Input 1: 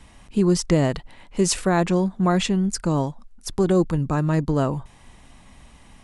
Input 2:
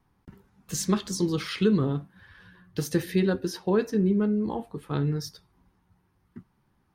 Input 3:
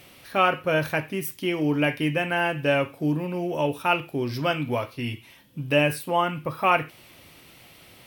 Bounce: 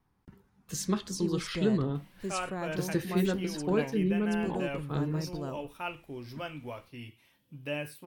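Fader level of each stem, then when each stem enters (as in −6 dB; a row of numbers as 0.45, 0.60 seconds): −17.0, −5.0, −14.5 decibels; 0.85, 0.00, 1.95 seconds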